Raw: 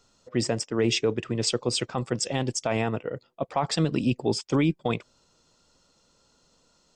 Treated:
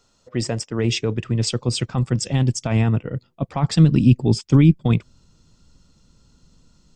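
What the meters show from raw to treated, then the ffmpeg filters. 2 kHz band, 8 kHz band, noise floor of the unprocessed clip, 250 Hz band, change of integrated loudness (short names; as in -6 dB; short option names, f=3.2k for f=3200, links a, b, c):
+1.0 dB, +1.5 dB, -66 dBFS, +8.0 dB, +7.5 dB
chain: -af "asubboost=boost=8:cutoff=200,volume=1.5dB"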